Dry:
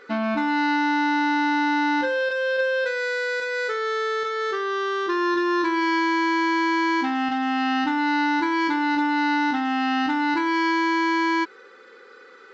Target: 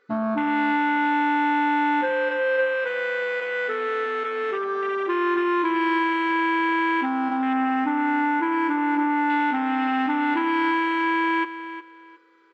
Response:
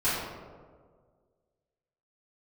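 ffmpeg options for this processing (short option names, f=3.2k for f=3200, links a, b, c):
-filter_complex "[0:a]afwtdn=0.0501,asettb=1/sr,asplit=3[a][b][c];[a]atrim=end=7.534[d];[b]atrim=start=7.53:end=9.3,asetpts=PTS-STARTPTS,afade=t=in:d=0.004:c=qsin,afade=t=out:st=1.766:d=0.004:c=qsin,equalizer=f=3.6k:w=1.5:g=-10[e];[c]atrim=start=9.296[f];[d][e]acrossfade=d=0.004:c1=hsin:c2=qsin[g];[g][f]acrossfade=d=0.004:c1=qsin:c2=hsin,asplit=2[h][i];[i]aecho=0:1:360|720|1080:0.237|0.0545|0.0125[j];[h][j]amix=inputs=2:normalize=0"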